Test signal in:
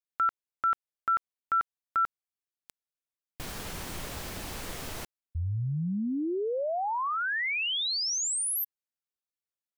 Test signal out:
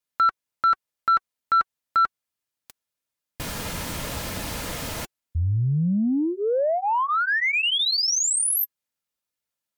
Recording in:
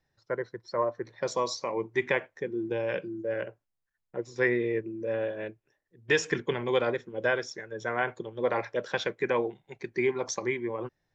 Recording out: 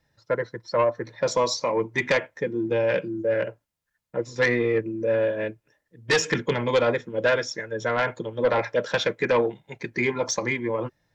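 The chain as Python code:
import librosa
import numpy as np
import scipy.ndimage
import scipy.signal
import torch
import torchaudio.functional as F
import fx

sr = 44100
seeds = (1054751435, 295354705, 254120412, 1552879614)

y = fx.notch_comb(x, sr, f0_hz=380.0)
y = fx.fold_sine(y, sr, drive_db=7, ceiling_db=-12.5)
y = y * 10.0 ** (-2.0 / 20.0)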